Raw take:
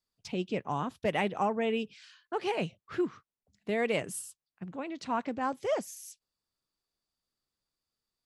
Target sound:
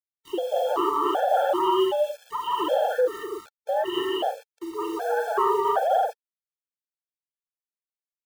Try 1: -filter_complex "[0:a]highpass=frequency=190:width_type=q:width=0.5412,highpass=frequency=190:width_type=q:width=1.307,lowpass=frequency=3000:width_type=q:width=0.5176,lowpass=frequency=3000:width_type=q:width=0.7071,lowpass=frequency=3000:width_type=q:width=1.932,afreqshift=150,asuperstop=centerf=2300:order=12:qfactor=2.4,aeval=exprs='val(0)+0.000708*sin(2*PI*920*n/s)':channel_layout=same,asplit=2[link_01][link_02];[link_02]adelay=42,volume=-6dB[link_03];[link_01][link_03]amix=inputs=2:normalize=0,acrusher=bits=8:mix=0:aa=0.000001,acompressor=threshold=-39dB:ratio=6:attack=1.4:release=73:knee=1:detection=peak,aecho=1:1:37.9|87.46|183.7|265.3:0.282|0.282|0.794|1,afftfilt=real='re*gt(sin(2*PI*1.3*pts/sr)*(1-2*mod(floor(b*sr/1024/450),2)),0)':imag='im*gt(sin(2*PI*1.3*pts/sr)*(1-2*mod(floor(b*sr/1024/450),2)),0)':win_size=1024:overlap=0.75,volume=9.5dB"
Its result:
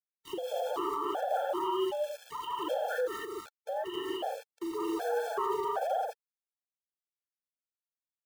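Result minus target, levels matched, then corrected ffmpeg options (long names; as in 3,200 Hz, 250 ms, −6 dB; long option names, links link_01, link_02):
downward compressor: peak gain reduction +10 dB
-filter_complex "[0:a]highpass=frequency=190:width_type=q:width=0.5412,highpass=frequency=190:width_type=q:width=1.307,lowpass=frequency=3000:width_type=q:width=0.5176,lowpass=frequency=3000:width_type=q:width=0.7071,lowpass=frequency=3000:width_type=q:width=1.932,afreqshift=150,asuperstop=centerf=2300:order=12:qfactor=2.4,aeval=exprs='val(0)+0.000708*sin(2*PI*920*n/s)':channel_layout=same,asplit=2[link_01][link_02];[link_02]adelay=42,volume=-6dB[link_03];[link_01][link_03]amix=inputs=2:normalize=0,acrusher=bits=8:mix=0:aa=0.000001,acompressor=threshold=-27dB:ratio=6:attack=1.4:release=73:knee=1:detection=peak,aecho=1:1:37.9|87.46|183.7|265.3:0.282|0.282|0.794|1,afftfilt=real='re*gt(sin(2*PI*1.3*pts/sr)*(1-2*mod(floor(b*sr/1024/450),2)),0)':imag='im*gt(sin(2*PI*1.3*pts/sr)*(1-2*mod(floor(b*sr/1024/450),2)),0)':win_size=1024:overlap=0.75,volume=9.5dB"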